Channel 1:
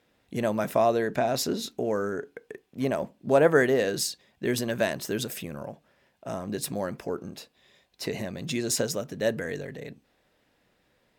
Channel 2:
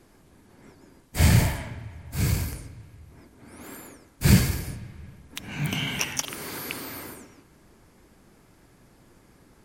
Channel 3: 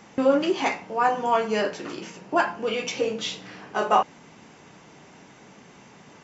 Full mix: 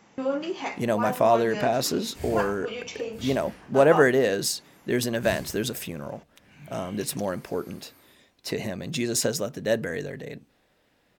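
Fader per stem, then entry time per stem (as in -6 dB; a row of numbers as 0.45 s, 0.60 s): +2.0 dB, -19.0 dB, -7.5 dB; 0.45 s, 1.00 s, 0.00 s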